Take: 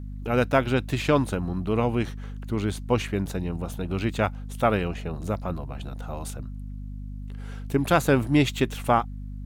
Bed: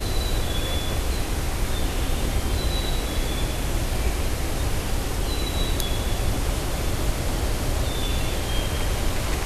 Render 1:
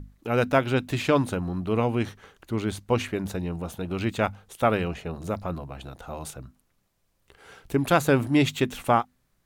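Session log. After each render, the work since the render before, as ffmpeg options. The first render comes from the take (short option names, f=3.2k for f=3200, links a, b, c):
-af "bandreject=f=50:t=h:w=6,bandreject=f=100:t=h:w=6,bandreject=f=150:t=h:w=6,bandreject=f=200:t=h:w=6,bandreject=f=250:t=h:w=6"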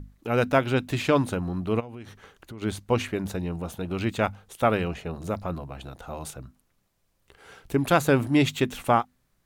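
-filter_complex "[0:a]asplit=3[a][b][c];[a]afade=t=out:st=1.79:d=0.02[d];[b]acompressor=threshold=-37dB:ratio=8:attack=3.2:release=140:knee=1:detection=peak,afade=t=in:st=1.79:d=0.02,afade=t=out:st=2.61:d=0.02[e];[c]afade=t=in:st=2.61:d=0.02[f];[d][e][f]amix=inputs=3:normalize=0"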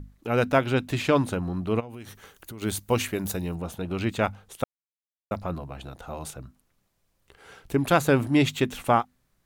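-filter_complex "[0:a]asettb=1/sr,asplit=3[a][b][c];[a]atrim=end=1.904[d];[b]atrim=start=1.9:end=3.55,asetpts=PTS-STARTPTS,afade=t=in:d=0.004:c=qsin,afade=t=out:st=1.646:d=0.004:c=qsin,aemphasis=mode=production:type=50fm[e];[c]atrim=start=3.546[f];[d][e]acrossfade=d=0.004:c1=hsin:c2=qsin[g];[g][f]acrossfade=d=0.004:c1=qsin:c2=hsin,asplit=3[h][i][j];[h]atrim=end=4.64,asetpts=PTS-STARTPTS,afade=t=out:st=4.636:d=0.004:c=hsin[k];[i]atrim=start=4.64:end=5.31,asetpts=PTS-STARTPTS,volume=0[l];[j]atrim=start=5.31,asetpts=PTS-STARTPTS,afade=t=in:d=0.004:c=hsin[m];[k][l][m]concat=n=3:v=0:a=1"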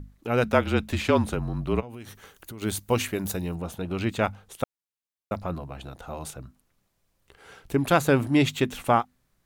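-filter_complex "[0:a]asettb=1/sr,asplit=3[a][b][c];[a]atrim=end=0.444[d];[b]atrim=start=0.44:end=1.83,asetpts=PTS-STARTPTS,afade=t=in:d=0.004:c=qsin,afade=t=out:st=1.386:d=0.004:c=qsin,afreqshift=-36[e];[c]atrim=start=1.826[f];[d][e]acrossfade=d=0.004:c1=hsin:c2=qsin[g];[g][f]acrossfade=d=0.004:c1=qsin:c2=hsin"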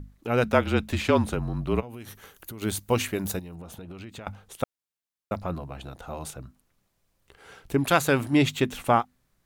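-filter_complex "[0:a]asettb=1/sr,asplit=3[a][b][c];[a]atrim=end=1.724[d];[b]atrim=start=1.72:end=2.66,asetpts=PTS-STARTPTS,afade=t=in:d=0.004:c=qsin,afade=t=out:st=0.936:d=0.004:c=qsin,equalizer=f=12k:t=o:w=0.24:g=9.5[e];[c]atrim=start=2.656[f];[d][e]acrossfade=d=0.004:c1=hsin:c2=qsin[g];[g][f]acrossfade=d=0.004:c1=qsin:c2=hsin,asettb=1/sr,asplit=3[h][i][j];[h]atrim=end=3.394[k];[i]atrim=start=3.39:end=4.27,asetpts=PTS-STARTPTS,afade=t=in:d=0.004:c=qsin,afade=t=out:st=0.876:d=0.004:c=qsin,acompressor=threshold=-37dB:ratio=16:attack=3.2:release=140:knee=1:detection=peak[l];[j]atrim=start=4.266[m];[k][l]acrossfade=d=0.004:c1=hsin:c2=qsin[n];[n][m]acrossfade=d=0.004:c1=qsin:c2=hsin,asettb=1/sr,asplit=3[o][p][q];[o]atrim=end=7.844[r];[p]atrim=start=7.84:end=8.33,asetpts=PTS-STARTPTS,afade=t=in:d=0.004:c=qsin,afade=t=out:st=0.486:d=0.004:c=qsin,tiltshelf=f=970:g=-3.5[s];[q]atrim=start=8.326[t];[r][s]acrossfade=d=0.004:c1=hsin:c2=qsin[u];[u][t]acrossfade=d=0.004:c1=qsin:c2=hsin"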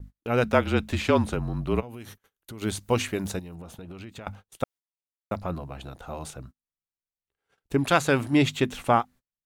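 -filter_complex "[0:a]agate=range=-33dB:threshold=-44dB:ratio=16:detection=peak,acrossover=split=9700[a][b];[b]acompressor=threshold=-54dB:ratio=4:attack=1:release=60[c];[a][c]amix=inputs=2:normalize=0"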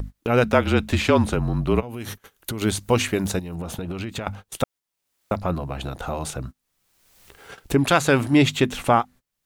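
-filter_complex "[0:a]asplit=2[a][b];[b]alimiter=limit=-17dB:level=0:latency=1:release=101,volume=1dB[c];[a][c]amix=inputs=2:normalize=0,acompressor=mode=upward:threshold=-23dB:ratio=2.5"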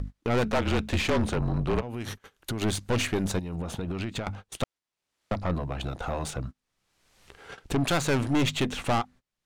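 -af "adynamicsmooth=sensitivity=6.5:basefreq=7.5k,aeval=exprs='(tanh(11.2*val(0)+0.45)-tanh(0.45))/11.2':c=same"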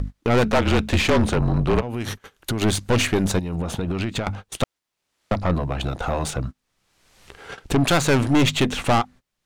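-af "volume=7dB"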